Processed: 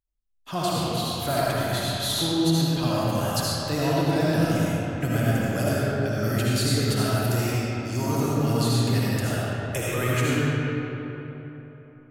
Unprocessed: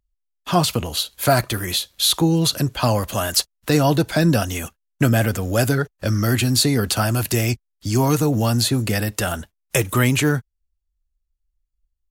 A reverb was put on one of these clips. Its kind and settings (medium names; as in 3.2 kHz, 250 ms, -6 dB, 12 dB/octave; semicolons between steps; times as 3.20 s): algorithmic reverb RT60 3.6 s, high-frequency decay 0.55×, pre-delay 35 ms, DRR -7.5 dB; trim -12.5 dB